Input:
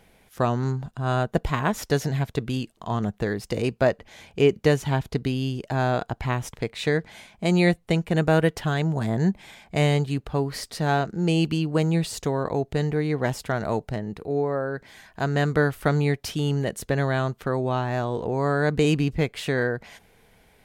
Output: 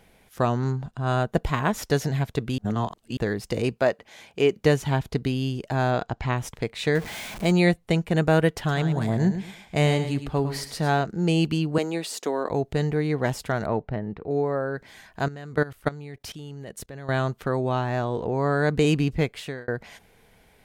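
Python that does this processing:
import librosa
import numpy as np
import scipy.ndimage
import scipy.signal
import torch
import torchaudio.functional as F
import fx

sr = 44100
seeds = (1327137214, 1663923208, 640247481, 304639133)

y = fx.high_shelf(x, sr, hz=11000.0, db=-10.5, at=(0.57, 1.07))
y = fx.highpass(y, sr, hz=290.0, slope=6, at=(3.78, 4.6))
y = fx.lowpass(y, sr, hz=7400.0, slope=24, at=(5.91, 6.38))
y = fx.zero_step(y, sr, step_db=-32.5, at=(6.95, 7.52))
y = fx.echo_feedback(y, sr, ms=107, feedback_pct=26, wet_db=-10, at=(8.58, 10.9))
y = fx.highpass(y, sr, hz=250.0, slope=24, at=(11.78, 12.49))
y = fx.lowpass(y, sr, hz=2200.0, slope=12, at=(13.66, 14.31))
y = fx.level_steps(y, sr, step_db=19, at=(15.28, 17.09))
y = fx.lowpass(y, sr, hz=fx.line((17.9, 8400.0), (18.51, 4200.0)), slope=6, at=(17.9, 18.51), fade=0.02)
y = fx.edit(y, sr, fx.reverse_span(start_s=2.58, length_s=0.59),
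    fx.fade_out_span(start_s=19.24, length_s=0.44), tone=tone)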